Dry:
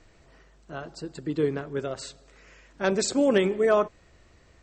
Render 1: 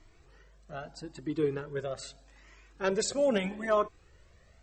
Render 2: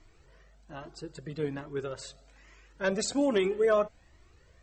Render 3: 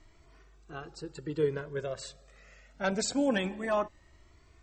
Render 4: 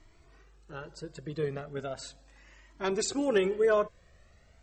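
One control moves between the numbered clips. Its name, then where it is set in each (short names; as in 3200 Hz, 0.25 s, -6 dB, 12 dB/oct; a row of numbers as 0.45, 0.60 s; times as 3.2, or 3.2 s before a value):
cascading flanger, rate: 0.8, 1.2, 0.24, 0.37 Hz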